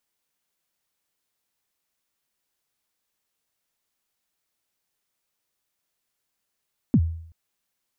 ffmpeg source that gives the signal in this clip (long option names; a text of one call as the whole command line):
ffmpeg -f lavfi -i "aevalsrc='0.266*pow(10,-3*t/0.63)*sin(2*PI*(290*0.059/log(82/290)*(exp(log(82/290)*min(t,0.059)/0.059)-1)+82*max(t-0.059,0)))':duration=0.38:sample_rate=44100" out.wav